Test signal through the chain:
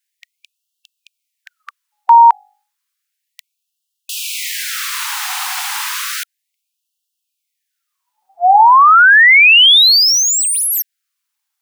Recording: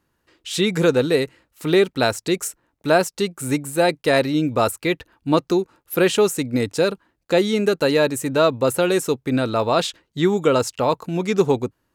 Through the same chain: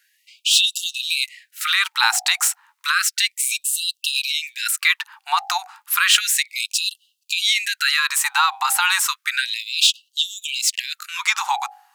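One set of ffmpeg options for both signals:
ffmpeg -i in.wav -filter_complex "[0:a]bandreject=frequency=49.27:width_type=h:width=4,bandreject=frequency=98.54:width_type=h:width=4,bandreject=frequency=147.81:width_type=h:width=4,bandreject=frequency=197.08:width_type=h:width=4,bandreject=frequency=246.35:width_type=h:width=4,bandreject=frequency=295.62:width_type=h:width=4,bandreject=frequency=344.89:width_type=h:width=4,bandreject=frequency=394.16:width_type=h:width=4,bandreject=frequency=443.43:width_type=h:width=4,bandreject=frequency=492.7:width_type=h:width=4,bandreject=frequency=541.97:width_type=h:width=4,bandreject=frequency=591.24:width_type=h:width=4,bandreject=frequency=640.51:width_type=h:width=4,bandreject=frequency=689.78:width_type=h:width=4,bandreject=frequency=739.05:width_type=h:width=4,bandreject=frequency=788.32:width_type=h:width=4,bandreject=frequency=837.59:width_type=h:width=4,acrossover=split=150|830|4300[link_01][link_02][link_03][link_04];[link_01]acompressor=threshold=-45dB:ratio=5[link_05];[link_04]asoftclip=type=tanh:threshold=-30dB[link_06];[link_05][link_02][link_03][link_06]amix=inputs=4:normalize=0,alimiter=level_in=14.5dB:limit=-1dB:release=50:level=0:latency=1,afftfilt=real='re*gte(b*sr/1024,690*pow(2700/690,0.5+0.5*sin(2*PI*0.32*pts/sr)))':imag='im*gte(b*sr/1024,690*pow(2700/690,0.5+0.5*sin(2*PI*0.32*pts/sr)))':win_size=1024:overlap=0.75" out.wav

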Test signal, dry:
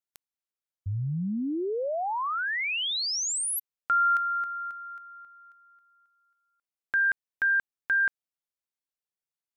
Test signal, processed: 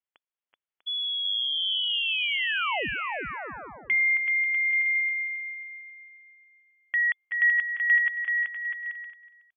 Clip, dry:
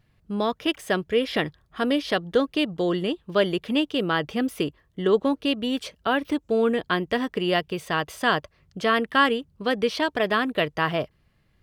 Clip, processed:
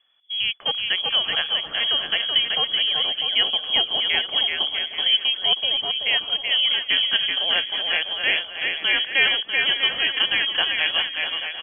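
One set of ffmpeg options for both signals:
ffmpeg -i in.wav -filter_complex "[0:a]highpass=60,asplit=2[link_01][link_02];[link_02]aecho=0:1:371:0.126[link_03];[link_01][link_03]amix=inputs=2:normalize=0,lowpass=frequency=3000:width_type=q:width=0.5098,lowpass=frequency=3000:width_type=q:width=0.6013,lowpass=frequency=3000:width_type=q:width=0.9,lowpass=frequency=3000:width_type=q:width=2.563,afreqshift=-3500,asplit=2[link_04][link_05];[link_05]aecho=0:1:380|646|832.2|962.5|1054:0.631|0.398|0.251|0.158|0.1[link_06];[link_04][link_06]amix=inputs=2:normalize=0" out.wav

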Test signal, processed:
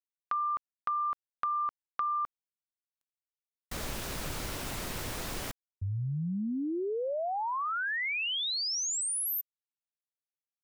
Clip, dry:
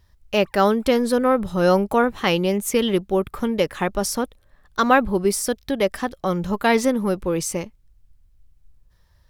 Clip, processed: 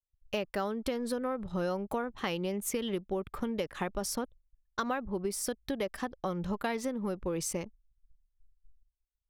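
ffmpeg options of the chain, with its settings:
ffmpeg -i in.wav -af "acompressor=threshold=-23dB:ratio=8,anlmdn=0.251,agate=range=-33dB:threshold=-46dB:ratio=3:detection=peak,volume=-6.5dB" out.wav

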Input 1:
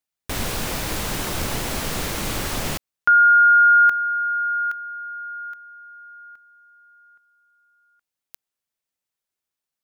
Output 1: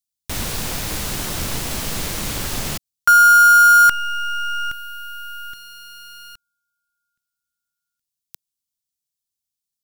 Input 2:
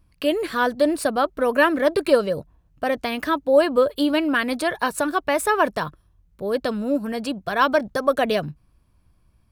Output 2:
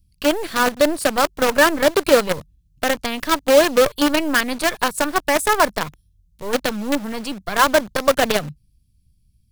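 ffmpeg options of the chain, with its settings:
ffmpeg -i in.wav -filter_complex "[0:a]lowshelf=frequency=180:gain=-2.5,acrossover=split=230|3300[link_01][link_02][link_03];[link_02]acrusher=bits=4:dc=4:mix=0:aa=0.000001[link_04];[link_01][link_04][link_03]amix=inputs=3:normalize=0,volume=3dB" out.wav

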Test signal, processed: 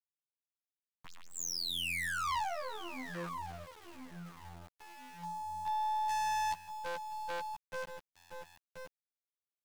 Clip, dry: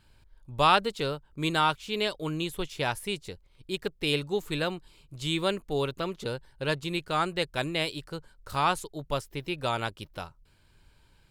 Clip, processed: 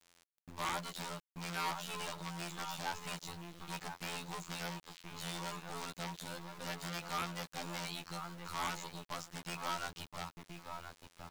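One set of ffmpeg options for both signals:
ffmpeg -i in.wav -filter_complex "[0:a]aeval=exprs='(tanh(56.2*val(0)+0.55)-tanh(0.55))/56.2':channel_layout=same,crystalizer=i=5.5:c=0,acrossover=split=3000[link_01][link_02];[link_02]acompressor=threshold=-36dB:ratio=4:attack=1:release=60[link_03];[link_01][link_03]amix=inputs=2:normalize=0,afftfilt=real='hypot(re,im)*cos(PI*b)':imag='0':win_size=2048:overlap=0.75,asplit=2[link_04][link_05];[link_05]adelay=1024,lowpass=frequency=1300:poles=1,volume=-8dB,asplit=2[link_06][link_07];[link_07]adelay=1024,lowpass=frequency=1300:poles=1,volume=0.25,asplit=2[link_08][link_09];[link_09]adelay=1024,lowpass=frequency=1300:poles=1,volume=0.25[link_10];[link_04][link_06][link_08][link_10]amix=inputs=4:normalize=0,aresample=16000,aresample=44100,equalizer=frequency=160:width_type=o:width=0.67:gain=12,equalizer=frequency=400:width_type=o:width=0.67:gain=-11,equalizer=frequency=1000:width_type=o:width=0.67:gain=9,aeval=exprs='0.0355*(abs(mod(val(0)/0.0355+3,4)-2)-1)':channel_layout=same,acrossover=split=310|3000[link_11][link_12][link_13];[link_11]acompressor=threshold=-47dB:ratio=10[link_14];[link_14][link_12][link_13]amix=inputs=3:normalize=0,aeval=exprs='val(0)*gte(abs(val(0)),0.00335)':channel_layout=same" out.wav

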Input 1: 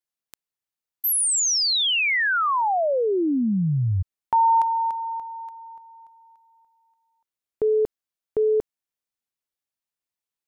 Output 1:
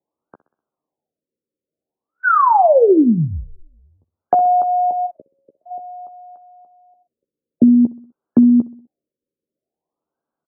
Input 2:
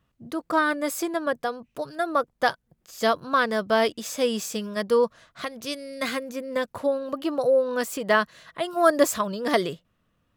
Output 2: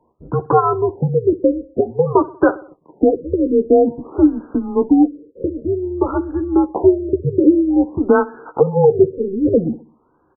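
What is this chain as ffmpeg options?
ffmpeg -i in.wav -filter_complex "[0:a]tiltshelf=frequency=1300:gain=9,acompressor=threshold=-30dB:ratio=2.5:attack=75:release=442:detection=peak,highpass=frequency=420:width_type=q:width=0.5412,highpass=frequency=420:width_type=q:width=1.307,lowpass=frequency=3400:width_type=q:width=0.5176,lowpass=frequency=3400:width_type=q:width=0.7071,lowpass=frequency=3400:width_type=q:width=1.932,afreqshift=-190,asplit=2[link_01][link_02];[link_02]adelay=13,volume=-7dB[link_03];[link_01][link_03]amix=inputs=2:normalize=0,aecho=1:1:63|126|189|252:0.106|0.053|0.0265|0.0132,alimiter=level_in=15dB:limit=-1dB:release=50:level=0:latency=1,afftfilt=real='re*lt(b*sr/1024,560*pow(1700/560,0.5+0.5*sin(2*PI*0.51*pts/sr)))':imag='im*lt(b*sr/1024,560*pow(1700/560,0.5+0.5*sin(2*PI*0.51*pts/sr)))':win_size=1024:overlap=0.75,volume=-1dB" out.wav

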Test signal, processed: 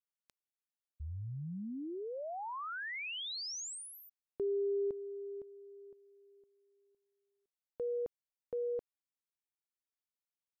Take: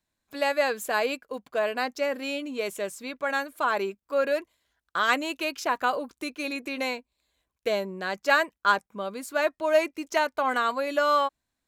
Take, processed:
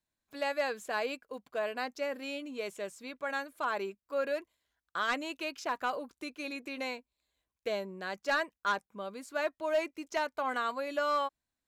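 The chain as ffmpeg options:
ffmpeg -i in.wav -filter_complex "[0:a]volume=15.5dB,asoftclip=hard,volume=-15.5dB,acrossover=split=8600[link_01][link_02];[link_02]acompressor=threshold=-54dB:ratio=4:attack=1:release=60[link_03];[link_01][link_03]amix=inputs=2:normalize=0,volume=-7.5dB" out.wav

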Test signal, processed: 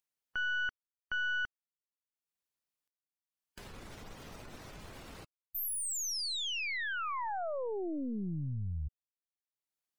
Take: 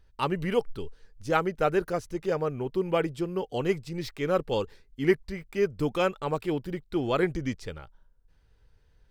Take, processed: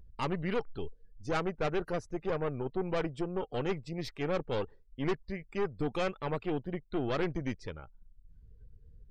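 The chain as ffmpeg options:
ffmpeg -i in.wav -af "acompressor=mode=upward:threshold=-37dB:ratio=2.5,aeval=exprs='(tanh(22.4*val(0)+0.7)-tanh(0.7))/22.4':channel_layout=same,afftdn=noise_reduction=26:noise_floor=-55" out.wav

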